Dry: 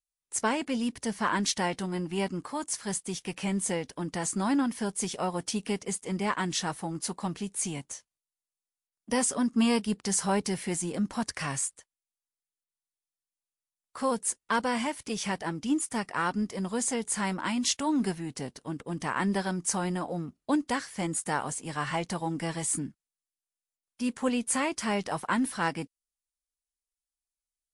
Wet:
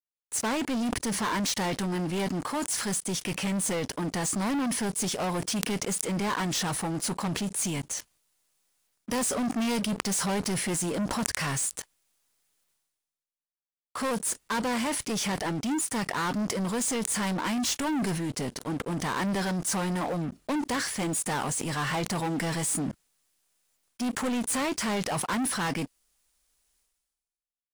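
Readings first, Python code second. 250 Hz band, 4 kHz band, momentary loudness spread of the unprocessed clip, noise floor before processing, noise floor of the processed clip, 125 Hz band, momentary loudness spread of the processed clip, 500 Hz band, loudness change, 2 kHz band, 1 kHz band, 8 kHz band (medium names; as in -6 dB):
+0.5 dB, +3.0 dB, 7 LU, under -85 dBFS, under -85 dBFS, +3.0 dB, 4 LU, +0.5 dB, +1.5 dB, +1.0 dB, 0.0 dB, +2.5 dB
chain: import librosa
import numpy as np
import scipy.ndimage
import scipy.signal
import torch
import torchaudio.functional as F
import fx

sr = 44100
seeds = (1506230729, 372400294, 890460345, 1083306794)

y = fx.leveller(x, sr, passes=5)
y = fx.sustainer(y, sr, db_per_s=43.0)
y = y * 10.0 ** (-10.0 / 20.0)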